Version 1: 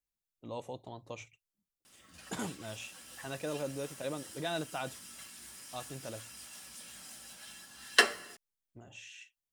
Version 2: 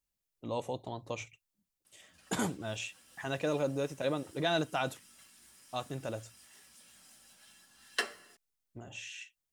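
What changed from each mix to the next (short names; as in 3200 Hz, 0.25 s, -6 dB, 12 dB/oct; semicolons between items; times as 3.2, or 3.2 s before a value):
speech +5.5 dB; background -9.5 dB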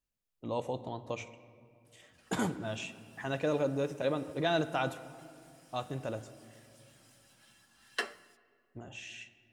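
speech: send on; master: add high shelf 3900 Hz -7 dB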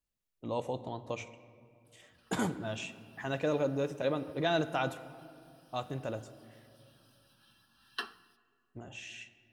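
background: add fixed phaser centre 2100 Hz, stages 6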